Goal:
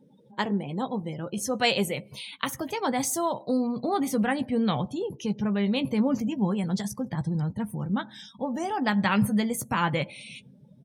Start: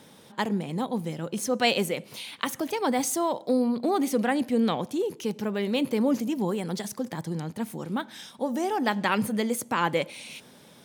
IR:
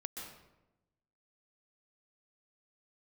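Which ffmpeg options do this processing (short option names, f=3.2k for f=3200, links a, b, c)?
-filter_complex "[0:a]asplit=2[a][b];[b]adelay=15,volume=-9.5dB[c];[a][c]amix=inputs=2:normalize=0,afftdn=nr=29:nf=-45,asubboost=boost=9.5:cutoff=110"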